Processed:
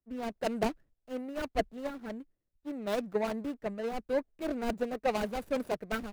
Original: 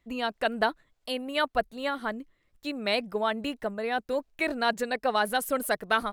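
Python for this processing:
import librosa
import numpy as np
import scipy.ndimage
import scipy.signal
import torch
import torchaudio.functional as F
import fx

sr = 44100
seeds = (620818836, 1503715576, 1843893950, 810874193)

y = scipy.ndimage.median_filter(x, 41, mode='constant')
y = fx.band_widen(y, sr, depth_pct=70)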